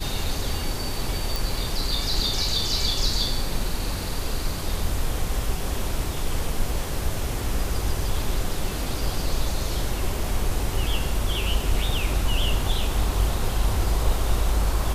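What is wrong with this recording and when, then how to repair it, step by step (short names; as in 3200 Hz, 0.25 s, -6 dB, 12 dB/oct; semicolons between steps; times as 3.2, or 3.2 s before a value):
1.36 pop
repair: de-click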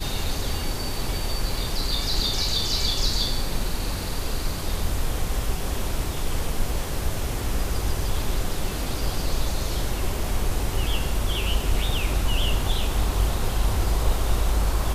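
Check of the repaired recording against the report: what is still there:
none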